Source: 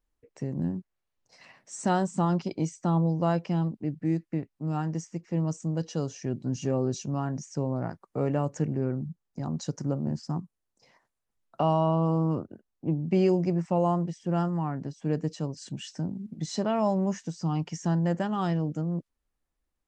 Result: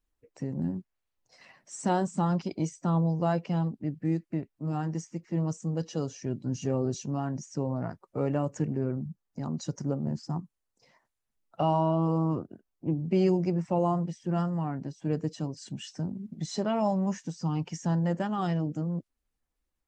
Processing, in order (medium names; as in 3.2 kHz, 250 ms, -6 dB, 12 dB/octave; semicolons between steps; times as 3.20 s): coarse spectral quantiser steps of 15 dB; trim -1 dB